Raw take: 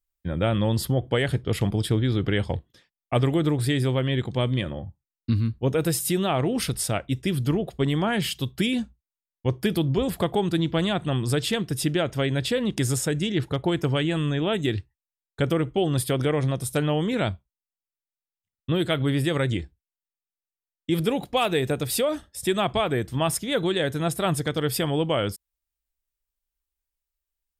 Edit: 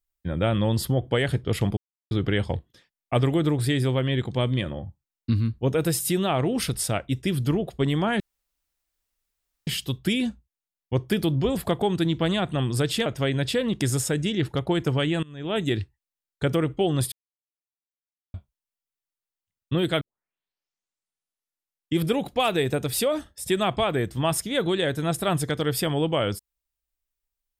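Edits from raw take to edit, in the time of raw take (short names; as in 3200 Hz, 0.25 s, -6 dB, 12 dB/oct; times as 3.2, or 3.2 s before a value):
1.77–2.11 mute
8.2 insert room tone 1.47 s
11.59–12.03 cut
14.2–14.54 fade in quadratic, from -22.5 dB
16.09–17.31 mute
18.98 tape start 1.98 s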